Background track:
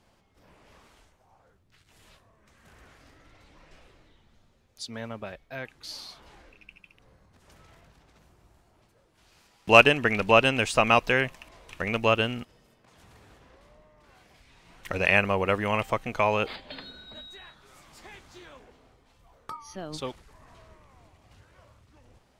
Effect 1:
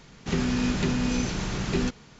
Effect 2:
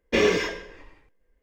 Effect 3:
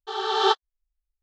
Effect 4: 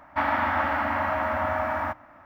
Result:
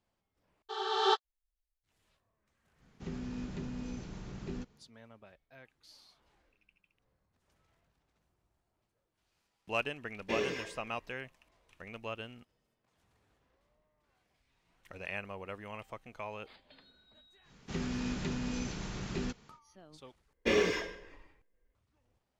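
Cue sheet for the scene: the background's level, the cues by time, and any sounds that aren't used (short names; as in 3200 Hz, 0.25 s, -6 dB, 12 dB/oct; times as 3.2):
background track -18.5 dB
0.62 replace with 3 -7.5 dB
2.74 add 1 -18 dB, fades 0.10 s + tilt shelf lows +4 dB
10.16 add 2 -14 dB + HPF 59 Hz
17.42 add 1 -10.5 dB, fades 0.10 s
20.33 replace with 2 -7.5 dB
not used: 4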